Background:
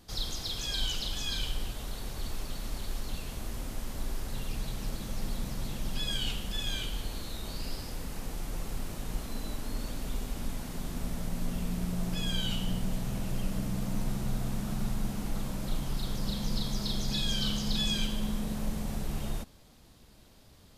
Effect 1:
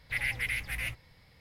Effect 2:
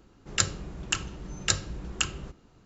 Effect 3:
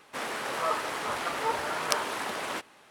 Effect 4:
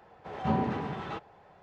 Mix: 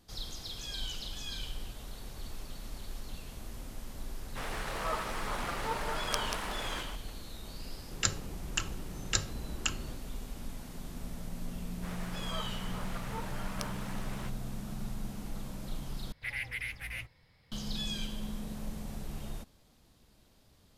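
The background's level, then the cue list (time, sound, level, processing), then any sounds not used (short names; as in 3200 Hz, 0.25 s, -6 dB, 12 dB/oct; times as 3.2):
background -6.5 dB
4.22 add 3 -6.5 dB + reverse delay 0.144 s, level -6 dB
7.65 add 2 -5 dB
11.69 add 3 -13 dB
16.12 replace with 1 -5.5 dB + high shelf 12000 Hz -5 dB
not used: 4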